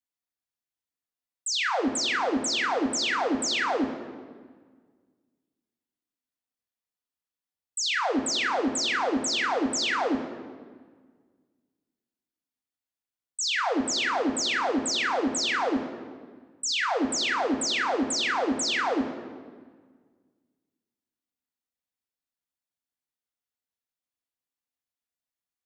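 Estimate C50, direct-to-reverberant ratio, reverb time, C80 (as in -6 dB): 8.5 dB, 1.0 dB, 1.6 s, 9.5 dB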